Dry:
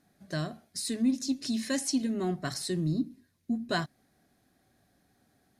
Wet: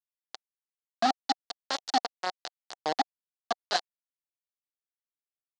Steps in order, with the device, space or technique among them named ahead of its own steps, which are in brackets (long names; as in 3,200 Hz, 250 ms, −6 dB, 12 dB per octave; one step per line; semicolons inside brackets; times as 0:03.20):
hand-held game console (bit reduction 4 bits; loudspeaker in its box 450–5,900 Hz, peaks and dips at 750 Hz +8 dB, 2,400 Hz −8 dB, 4,400 Hz +7 dB)